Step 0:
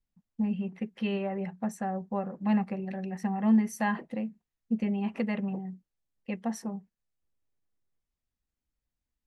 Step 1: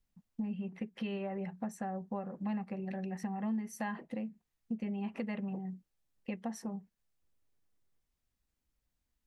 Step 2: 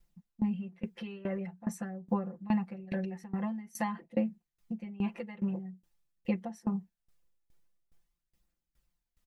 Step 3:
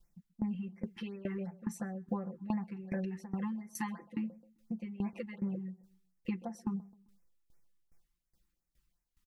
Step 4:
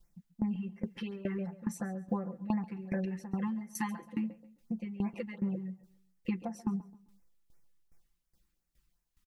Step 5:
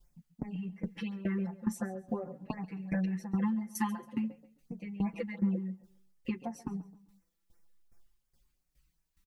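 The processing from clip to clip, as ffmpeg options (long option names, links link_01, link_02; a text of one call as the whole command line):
ffmpeg -i in.wav -af "acompressor=threshold=-42dB:ratio=3,volume=3.5dB" out.wav
ffmpeg -i in.wav -af "aphaser=in_gain=1:out_gain=1:delay=2.4:decay=0.27:speed=0.47:type=triangular,aecho=1:1:5.8:0.96,aeval=exprs='val(0)*pow(10,-21*if(lt(mod(2.4*n/s,1),2*abs(2.4)/1000),1-mod(2.4*n/s,1)/(2*abs(2.4)/1000),(mod(2.4*n/s,1)-2*abs(2.4)/1000)/(1-2*abs(2.4)/1000))/20)':channel_layout=same,volume=6dB" out.wav
ffmpeg -i in.wav -filter_complex "[0:a]acompressor=threshold=-33dB:ratio=2.5,asplit=2[link_01][link_02];[link_02]adelay=131,lowpass=frequency=2000:poles=1,volume=-21.5dB,asplit=2[link_03][link_04];[link_04]adelay=131,lowpass=frequency=2000:poles=1,volume=0.41,asplit=2[link_05][link_06];[link_06]adelay=131,lowpass=frequency=2000:poles=1,volume=0.41[link_07];[link_01][link_03][link_05][link_07]amix=inputs=4:normalize=0,afftfilt=real='re*(1-between(b*sr/1024,540*pow(3700/540,0.5+0.5*sin(2*PI*2.8*pts/sr))/1.41,540*pow(3700/540,0.5+0.5*sin(2*PI*2.8*pts/sr))*1.41))':imag='im*(1-between(b*sr/1024,540*pow(3700/540,0.5+0.5*sin(2*PI*2.8*pts/sr))/1.41,540*pow(3700/540,0.5+0.5*sin(2*PI*2.8*pts/sr))*1.41))':win_size=1024:overlap=0.75" out.wav
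ffmpeg -i in.wav -af "aecho=1:1:138|276|414:0.119|0.0357|0.0107,volume=2.5dB" out.wav
ffmpeg -i in.wav -filter_complex "[0:a]asplit=2[link_01][link_02];[link_02]adelay=5.1,afreqshift=0.48[link_03];[link_01][link_03]amix=inputs=2:normalize=1,volume=4dB" out.wav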